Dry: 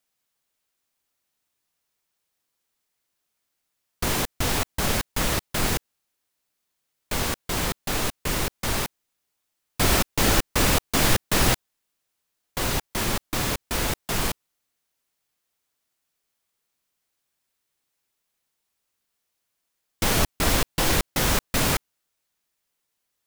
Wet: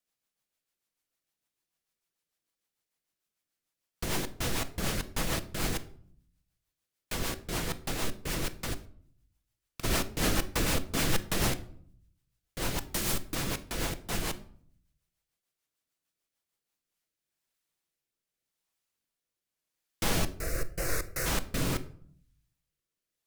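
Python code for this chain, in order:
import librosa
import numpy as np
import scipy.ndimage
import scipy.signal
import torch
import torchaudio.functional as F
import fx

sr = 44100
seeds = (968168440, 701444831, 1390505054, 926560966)

p1 = fx.gate_flip(x, sr, shuts_db=-17.0, range_db=-26, at=(8.73, 9.83), fade=0.02)
p2 = fx.high_shelf(p1, sr, hz=5500.0, db=9.0, at=(12.79, 13.35))
p3 = fx.fixed_phaser(p2, sr, hz=890.0, stages=6, at=(20.38, 21.25), fade=0.02)
p4 = 10.0 ** (-18.0 / 20.0) * np.tanh(p3 / 10.0 ** (-18.0 / 20.0))
p5 = p3 + F.gain(torch.from_numpy(p4), -4.5).numpy()
p6 = fx.rotary_switch(p5, sr, hz=6.7, then_hz=0.85, switch_at_s=16.39)
p7 = fx.room_shoebox(p6, sr, seeds[0], volume_m3=860.0, walls='furnished', distance_m=0.68)
p8 = fx.record_warp(p7, sr, rpm=45.0, depth_cents=100.0)
y = F.gain(torch.from_numpy(p8), -9.0).numpy()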